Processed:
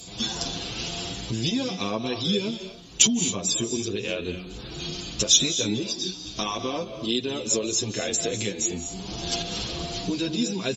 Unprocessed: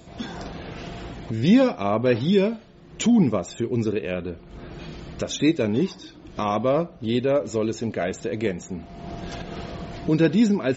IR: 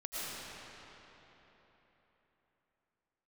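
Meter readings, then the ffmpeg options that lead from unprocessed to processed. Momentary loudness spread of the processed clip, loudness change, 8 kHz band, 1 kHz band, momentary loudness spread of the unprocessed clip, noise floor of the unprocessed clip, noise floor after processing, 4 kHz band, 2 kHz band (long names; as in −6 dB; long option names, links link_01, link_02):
13 LU, −2.5 dB, can't be measured, −5.0 dB, 18 LU, −46 dBFS, −40 dBFS, +11.0 dB, −1.5 dB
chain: -filter_complex "[0:a]bandreject=frequency=610:width=12,acompressor=threshold=-24dB:ratio=12,aexciter=amount=5.5:drive=6.2:freq=2800,asplit=2[link_01][link_02];[1:a]atrim=start_sample=2205,atrim=end_sample=6615,asetrate=23373,aresample=44100[link_03];[link_02][link_03]afir=irnorm=-1:irlink=0,volume=-7.5dB[link_04];[link_01][link_04]amix=inputs=2:normalize=0,aresample=32000,aresample=44100,asplit=2[link_05][link_06];[link_06]adelay=8.1,afreqshift=1.8[link_07];[link_05][link_07]amix=inputs=2:normalize=1"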